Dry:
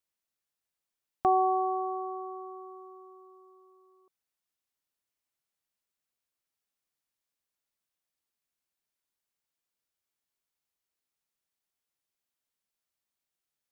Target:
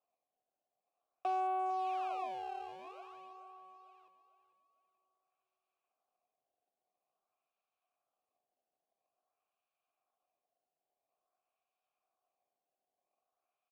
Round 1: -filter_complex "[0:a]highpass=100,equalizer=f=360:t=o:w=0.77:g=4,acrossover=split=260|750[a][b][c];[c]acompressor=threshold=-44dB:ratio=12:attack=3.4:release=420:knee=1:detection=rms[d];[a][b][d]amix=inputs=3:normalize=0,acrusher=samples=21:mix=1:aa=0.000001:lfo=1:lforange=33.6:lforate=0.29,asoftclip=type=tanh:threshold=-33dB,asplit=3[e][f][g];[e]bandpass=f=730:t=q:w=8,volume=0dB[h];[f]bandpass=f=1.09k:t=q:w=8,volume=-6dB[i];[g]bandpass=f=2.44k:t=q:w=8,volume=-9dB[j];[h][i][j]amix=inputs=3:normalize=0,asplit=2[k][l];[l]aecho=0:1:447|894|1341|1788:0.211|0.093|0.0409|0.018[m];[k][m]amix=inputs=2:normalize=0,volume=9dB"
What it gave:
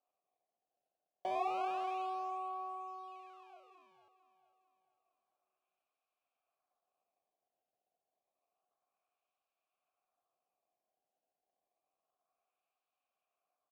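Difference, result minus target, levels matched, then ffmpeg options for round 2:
decimation with a swept rate: distortion +11 dB
-filter_complex "[0:a]highpass=100,equalizer=f=360:t=o:w=0.77:g=4,acrossover=split=260|750[a][b][c];[c]acompressor=threshold=-44dB:ratio=12:attack=3.4:release=420:knee=1:detection=rms[d];[a][b][d]amix=inputs=3:normalize=0,acrusher=samples=21:mix=1:aa=0.000001:lfo=1:lforange=33.6:lforate=0.49,asoftclip=type=tanh:threshold=-33dB,asplit=3[e][f][g];[e]bandpass=f=730:t=q:w=8,volume=0dB[h];[f]bandpass=f=1.09k:t=q:w=8,volume=-6dB[i];[g]bandpass=f=2.44k:t=q:w=8,volume=-9dB[j];[h][i][j]amix=inputs=3:normalize=0,asplit=2[k][l];[l]aecho=0:1:447|894|1341|1788:0.211|0.093|0.0409|0.018[m];[k][m]amix=inputs=2:normalize=0,volume=9dB"

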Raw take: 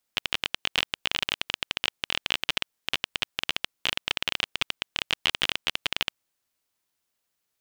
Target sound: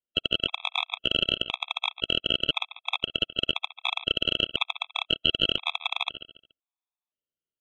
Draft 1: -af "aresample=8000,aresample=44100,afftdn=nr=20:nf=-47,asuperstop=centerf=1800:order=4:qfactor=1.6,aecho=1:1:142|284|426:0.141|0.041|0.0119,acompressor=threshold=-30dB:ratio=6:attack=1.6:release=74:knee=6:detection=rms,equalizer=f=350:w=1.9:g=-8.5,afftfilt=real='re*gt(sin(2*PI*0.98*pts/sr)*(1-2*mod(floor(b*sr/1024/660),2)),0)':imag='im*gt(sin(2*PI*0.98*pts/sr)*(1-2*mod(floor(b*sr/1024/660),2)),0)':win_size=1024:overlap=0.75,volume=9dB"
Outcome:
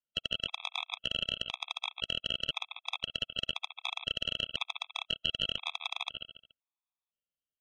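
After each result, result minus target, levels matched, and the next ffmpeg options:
compressor: peak gain reduction +9.5 dB; 250 Hz band -4.5 dB
-af "aresample=8000,aresample=44100,afftdn=nr=20:nf=-47,asuperstop=centerf=1800:order=4:qfactor=1.6,aecho=1:1:142|284|426:0.141|0.041|0.0119,acompressor=threshold=-18.5dB:ratio=6:attack=1.6:release=74:knee=6:detection=rms,equalizer=f=350:w=1.9:g=-8.5,afftfilt=real='re*gt(sin(2*PI*0.98*pts/sr)*(1-2*mod(floor(b*sr/1024/660),2)),0)':imag='im*gt(sin(2*PI*0.98*pts/sr)*(1-2*mod(floor(b*sr/1024/660),2)),0)':win_size=1024:overlap=0.75,volume=9dB"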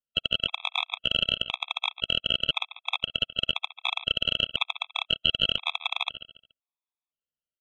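250 Hz band -5.0 dB
-af "aresample=8000,aresample=44100,afftdn=nr=20:nf=-47,asuperstop=centerf=1800:order=4:qfactor=1.6,aecho=1:1:142|284|426:0.141|0.041|0.0119,acompressor=threshold=-18.5dB:ratio=6:attack=1.6:release=74:knee=6:detection=rms,equalizer=f=350:w=1.9:g=3,afftfilt=real='re*gt(sin(2*PI*0.98*pts/sr)*(1-2*mod(floor(b*sr/1024/660),2)),0)':imag='im*gt(sin(2*PI*0.98*pts/sr)*(1-2*mod(floor(b*sr/1024/660),2)),0)':win_size=1024:overlap=0.75,volume=9dB"

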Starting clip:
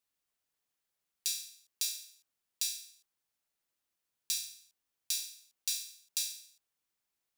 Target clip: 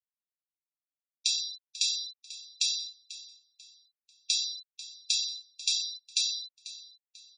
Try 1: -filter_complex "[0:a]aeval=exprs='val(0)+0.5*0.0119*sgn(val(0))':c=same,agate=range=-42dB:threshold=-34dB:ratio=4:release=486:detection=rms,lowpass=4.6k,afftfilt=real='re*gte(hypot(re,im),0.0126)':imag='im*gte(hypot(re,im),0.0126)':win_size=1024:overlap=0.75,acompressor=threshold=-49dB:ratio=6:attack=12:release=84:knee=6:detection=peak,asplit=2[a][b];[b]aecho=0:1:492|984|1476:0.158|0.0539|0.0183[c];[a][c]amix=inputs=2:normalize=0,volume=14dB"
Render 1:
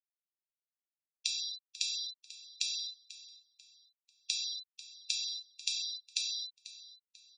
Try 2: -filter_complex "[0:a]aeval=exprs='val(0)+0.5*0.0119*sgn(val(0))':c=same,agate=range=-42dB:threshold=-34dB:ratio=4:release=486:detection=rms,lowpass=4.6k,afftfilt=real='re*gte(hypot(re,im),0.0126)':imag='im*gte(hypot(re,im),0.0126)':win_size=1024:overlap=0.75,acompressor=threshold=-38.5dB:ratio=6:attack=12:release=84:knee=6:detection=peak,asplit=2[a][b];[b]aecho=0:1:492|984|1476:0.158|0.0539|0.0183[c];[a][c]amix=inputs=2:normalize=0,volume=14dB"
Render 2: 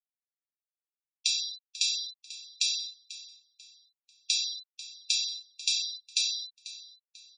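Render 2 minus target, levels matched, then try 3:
2000 Hz band +3.5 dB
-filter_complex "[0:a]aeval=exprs='val(0)+0.5*0.0119*sgn(val(0))':c=same,agate=range=-42dB:threshold=-34dB:ratio=4:release=486:detection=rms,lowpass=4.6k,equalizer=f=1.5k:t=o:w=0.71:g=-12.5,afftfilt=real='re*gte(hypot(re,im),0.0126)':imag='im*gte(hypot(re,im),0.0126)':win_size=1024:overlap=0.75,acompressor=threshold=-38.5dB:ratio=6:attack=12:release=84:knee=6:detection=peak,asplit=2[a][b];[b]aecho=0:1:492|984|1476:0.158|0.0539|0.0183[c];[a][c]amix=inputs=2:normalize=0,volume=14dB"

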